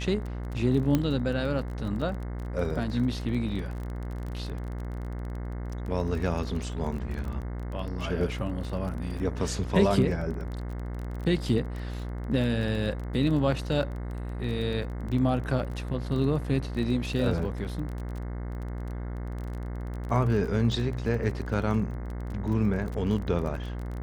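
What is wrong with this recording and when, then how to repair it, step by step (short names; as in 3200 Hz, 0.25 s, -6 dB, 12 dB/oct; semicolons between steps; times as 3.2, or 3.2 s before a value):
buzz 60 Hz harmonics 36 -34 dBFS
crackle 23/s -34 dBFS
0.95 pop -12 dBFS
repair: de-click; de-hum 60 Hz, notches 36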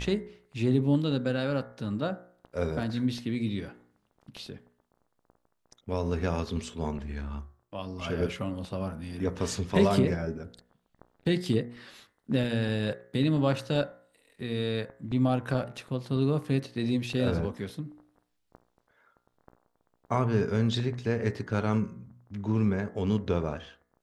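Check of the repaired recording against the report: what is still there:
none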